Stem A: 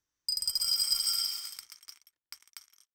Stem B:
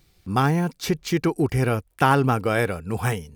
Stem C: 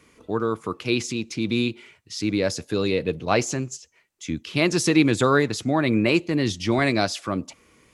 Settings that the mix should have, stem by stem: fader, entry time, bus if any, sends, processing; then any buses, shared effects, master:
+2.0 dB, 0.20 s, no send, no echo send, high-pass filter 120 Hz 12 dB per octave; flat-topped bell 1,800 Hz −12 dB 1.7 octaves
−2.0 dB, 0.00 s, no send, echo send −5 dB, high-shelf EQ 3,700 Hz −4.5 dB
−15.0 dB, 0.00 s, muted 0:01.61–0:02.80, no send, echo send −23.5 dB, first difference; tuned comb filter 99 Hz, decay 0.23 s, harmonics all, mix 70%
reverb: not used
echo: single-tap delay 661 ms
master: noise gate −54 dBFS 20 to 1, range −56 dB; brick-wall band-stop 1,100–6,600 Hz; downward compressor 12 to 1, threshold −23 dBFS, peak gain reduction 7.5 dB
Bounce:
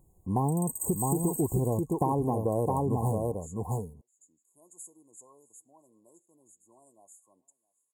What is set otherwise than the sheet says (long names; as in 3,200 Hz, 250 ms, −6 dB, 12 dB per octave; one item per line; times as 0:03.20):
stem C: missing tuned comb filter 99 Hz, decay 0.23 s, harmonics all, mix 70%
master: missing noise gate −54 dBFS 20 to 1, range −56 dB